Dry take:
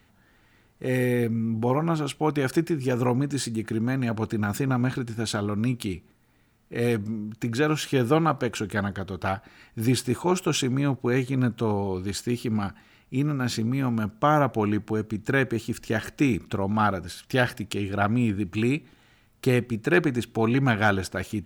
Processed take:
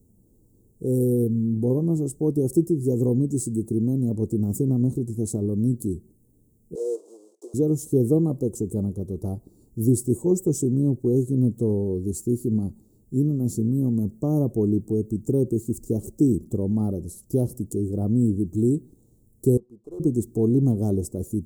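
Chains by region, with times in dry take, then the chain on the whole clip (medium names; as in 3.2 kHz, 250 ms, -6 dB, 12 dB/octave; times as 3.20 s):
6.75–7.54 s: block-companded coder 3-bit + steep high-pass 390 Hz 48 dB/octave + distance through air 110 m
19.57–20.00 s: de-esser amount 75% + band-pass filter 1.1 kHz, Q 2.9 + sliding maximum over 3 samples
whole clip: Chebyshev band-stop 430–7800 Hz, order 3; high-order bell 1.6 kHz +10 dB; trim +4 dB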